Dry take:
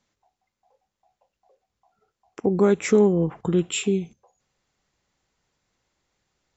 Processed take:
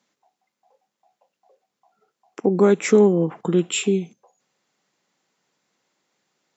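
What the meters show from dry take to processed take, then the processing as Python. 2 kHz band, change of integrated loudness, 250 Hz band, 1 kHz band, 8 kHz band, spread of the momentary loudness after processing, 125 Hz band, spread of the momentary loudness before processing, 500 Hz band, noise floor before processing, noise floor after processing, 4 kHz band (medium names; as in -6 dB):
+3.0 dB, +2.5 dB, +2.0 dB, +3.0 dB, no reading, 10 LU, +1.0 dB, 9 LU, +3.0 dB, -83 dBFS, -82 dBFS, +3.0 dB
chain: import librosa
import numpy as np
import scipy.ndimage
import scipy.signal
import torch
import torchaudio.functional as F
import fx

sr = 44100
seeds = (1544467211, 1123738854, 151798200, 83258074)

y = scipy.signal.sosfilt(scipy.signal.butter(4, 170.0, 'highpass', fs=sr, output='sos'), x)
y = F.gain(torch.from_numpy(y), 3.0).numpy()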